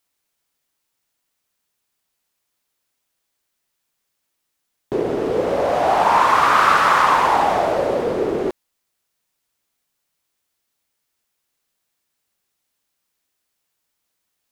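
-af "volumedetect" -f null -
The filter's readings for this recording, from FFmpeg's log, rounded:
mean_volume: -22.8 dB
max_volume: -1.6 dB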